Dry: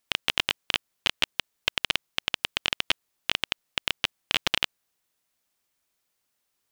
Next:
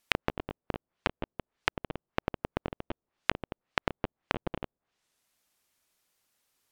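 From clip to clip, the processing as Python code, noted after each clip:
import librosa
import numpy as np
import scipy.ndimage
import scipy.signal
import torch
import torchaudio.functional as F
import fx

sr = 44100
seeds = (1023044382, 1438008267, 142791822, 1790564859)

y = fx.env_lowpass_down(x, sr, base_hz=550.0, full_db=-31.5)
y = F.gain(torch.from_numpy(y), 2.5).numpy()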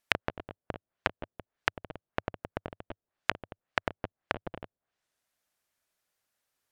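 y = fx.graphic_eq_15(x, sr, hz=(100, 630, 1600), db=(4, 5, 5))
y = fx.upward_expand(y, sr, threshold_db=-32.0, expansion=1.5)
y = F.gain(torch.from_numpy(y), -2.0).numpy()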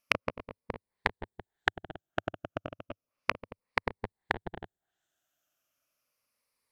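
y = fx.spec_ripple(x, sr, per_octave=0.91, drift_hz=-0.33, depth_db=10)
y = F.gain(torch.from_numpy(y), -1.0).numpy()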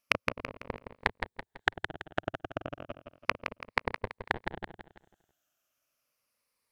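y = fx.echo_feedback(x, sr, ms=166, feedback_pct=39, wet_db=-8.0)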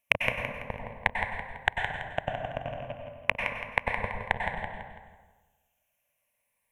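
y = fx.fixed_phaser(x, sr, hz=1300.0, stages=6)
y = fx.rev_plate(y, sr, seeds[0], rt60_s=1.2, hf_ratio=0.5, predelay_ms=85, drr_db=3.0)
y = F.gain(torch.from_numpy(y), 4.5).numpy()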